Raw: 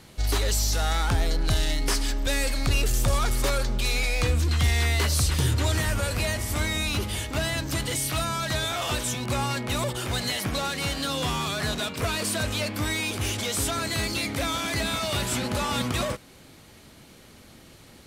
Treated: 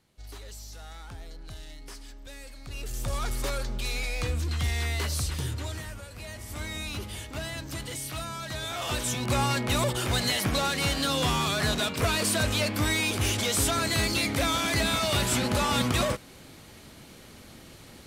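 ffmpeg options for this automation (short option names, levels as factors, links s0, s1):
-af "volume=4.47,afade=t=in:st=2.65:d=0.61:silence=0.223872,afade=t=out:st=5.14:d=0.95:silence=0.266073,afade=t=in:st=6.09:d=0.67:silence=0.334965,afade=t=in:st=8.56:d=0.84:silence=0.334965"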